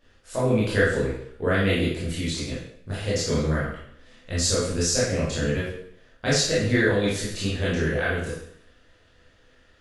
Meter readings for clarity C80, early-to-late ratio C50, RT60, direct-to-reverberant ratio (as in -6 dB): 5.0 dB, 0.5 dB, 0.65 s, -9.0 dB